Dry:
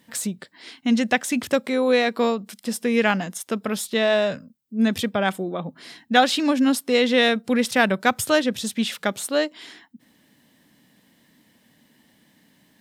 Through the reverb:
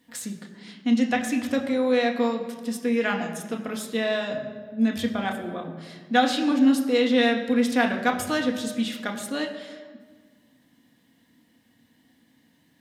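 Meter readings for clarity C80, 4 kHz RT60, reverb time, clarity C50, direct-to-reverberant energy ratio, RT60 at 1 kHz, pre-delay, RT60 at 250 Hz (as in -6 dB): 9.5 dB, 1.1 s, 1.5 s, 8.5 dB, 1.0 dB, 1.5 s, 3 ms, 1.9 s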